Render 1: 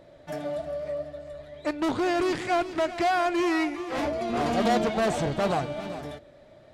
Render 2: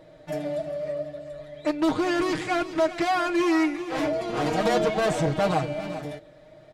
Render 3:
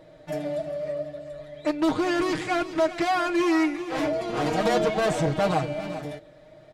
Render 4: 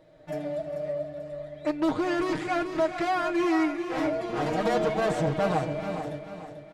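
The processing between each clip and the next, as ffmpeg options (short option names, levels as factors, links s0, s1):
-af "aecho=1:1:6.4:0.73"
-af anull
-filter_complex "[0:a]aecho=1:1:439|878|1317|1756:0.335|0.137|0.0563|0.0231,acrossover=split=2400[s0][s1];[s0]dynaudnorm=f=120:g=3:m=1.68[s2];[s2][s1]amix=inputs=2:normalize=0,volume=0.447"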